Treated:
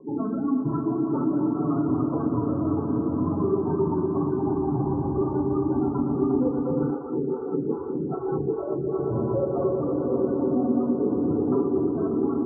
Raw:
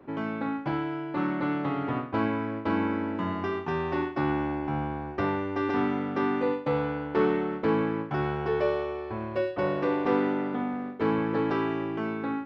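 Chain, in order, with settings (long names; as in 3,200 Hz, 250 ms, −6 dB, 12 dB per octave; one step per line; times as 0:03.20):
random phases in long frames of 50 ms
reverb reduction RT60 0.5 s
gate on every frequency bin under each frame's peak −10 dB strong
rotating-speaker cabinet horn 7.5 Hz, later 0.9 Hz, at 0:05.89
downward compressor, threshold −32 dBFS, peak gain reduction 12.5 dB
elliptic low-pass filter 1,300 Hz, stop band 40 dB
brickwall limiter −30 dBFS, peak gain reduction 6.5 dB
echo that builds up and dies away 118 ms, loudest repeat 5, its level −11 dB
convolution reverb RT60 0.50 s, pre-delay 3 ms, DRR 2 dB
0:06.90–0:08.99: phaser with staggered stages 2.5 Hz
level +8 dB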